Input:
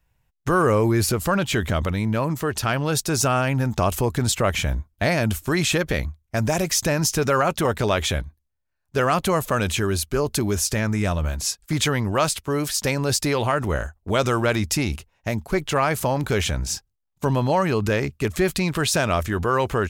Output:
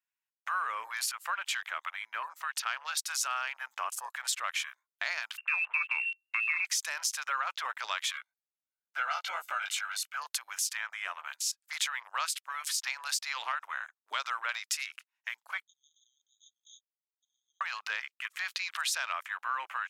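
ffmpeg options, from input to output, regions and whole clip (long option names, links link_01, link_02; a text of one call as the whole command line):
ffmpeg -i in.wav -filter_complex "[0:a]asettb=1/sr,asplit=3[link_01][link_02][link_03];[link_01]atrim=end=5.374[link_04];[link_02]atrim=start=5.37:end=6.65,asetpts=PTS-STARTPTS,afade=type=in:duration=0.004:curve=qsin,afade=type=out:start_time=1.276:duration=0.004:curve=qsin,asplit=2[link_05][link_06];[link_06]adelay=13,volume=-12dB[link_07];[link_05][link_07]amix=inputs=2:normalize=0,atrim=end_sample=56448,lowpass=frequency=2400:width_type=q:width=0.5098,lowpass=frequency=2400:width_type=q:width=0.6013,lowpass=frequency=2400:width_type=q:width=0.9,lowpass=frequency=2400:width_type=q:width=2.563,afreqshift=-2800[link_08];[link_03]atrim=start=6.646[link_09];[link_04][link_08]acrossfade=duration=0.004:curve1=hsin:curve2=qsin[link_10];[link_10][link_09]acrossfade=duration=0.004:curve1=qsin:curve2=hsin,asettb=1/sr,asplit=3[link_11][link_12][link_13];[link_11]atrim=end=8.124[link_14];[link_12]atrim=start=8.12:end=10.17,asetpts=PTS-STARTPTS,afade=type=in:duration=0.004:curve=qsin,afade=type=out:start_time=2.046:duration=0.004:curve=qsin,equalizer=frequency=10000:width=7.7:gain=-7.5,aecho=1:1:1.4:1,atrim=end_sample=90405,flanger=delay=17:depth=3.1:speed=2.3[link_15];[link_13]atrim=start=10.166[link_16];[link_14][link_15]acrossfade=duration=0.004:curve1=hsin:curve2=qsin[link_17];[link_17][link_16]acrossfade=duration=0.004:curve1=qsin:curve2=hsin,asettb=1/sr,asplit=3[link_18][link_19][link_20];[link_18]atrim=end=15.634[link_21];[link_19]atrim=start=15.63:end=17.61,asetpts=PTS-STARTPTS,afade=type=in:duration=0.004:curve=qsin,afade=type=out:start_time=1.976:duration=0.004:curve=qsin,asuperpass=centerf=5000:order=12:qfactor=7.8,aeval=exprs='val(0)*sin(2*PI*1500*n/s)':channel_layout=same[link_22];[link_20]atrim=start=17.606[link_23];[link_21][link_22]acrossfade=duration=0.004:curve1=hsin:curve2=qsin[link_24];[link_24][link_23]acrossfade=duration=0.004:curve1=qsin:curve2=hsin,highpass=frequency=1100:width=0.5412,highpass=frequency=1100:width=1.3066,afwtdn=0.0126,acompressor=threshold=-35dB:ratio=2" out.wav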